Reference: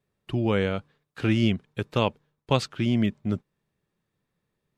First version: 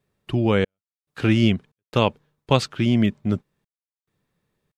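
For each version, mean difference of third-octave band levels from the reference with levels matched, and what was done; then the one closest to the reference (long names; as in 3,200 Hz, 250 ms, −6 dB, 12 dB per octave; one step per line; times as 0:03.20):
3.0 dB: gate pattern "xxx..xxx.xxxxx" 70 BPM −60 dB
level +4.5 dB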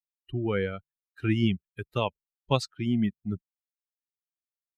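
7.0 dB: spectral dynamics exaggerated over time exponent 2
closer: first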